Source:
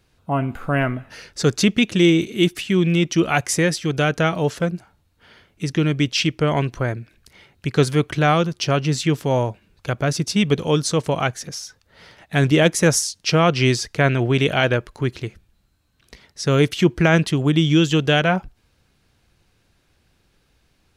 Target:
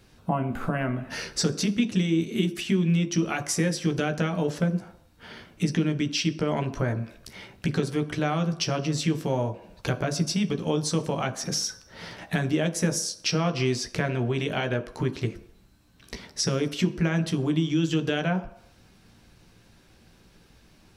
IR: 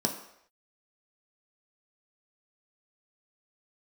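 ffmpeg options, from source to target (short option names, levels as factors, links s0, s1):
-filter_complex "[0:a]acompressor=threshold=0.0316:ratio=10,asplit=2[s0][s1];[1:a]atrim=start_sample=2205,adelay=13[s2];[s1][s2]afir=irnorm=-1:irlink=0,volume=0.237[s3];[s0][s3]amix=inputs=2:normalize=0,volume=1.68"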